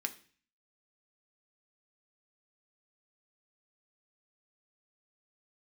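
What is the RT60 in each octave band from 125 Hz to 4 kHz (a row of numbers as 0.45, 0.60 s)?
0.65, 0.55, 0.45, 0.40, 0.50, 0.50 s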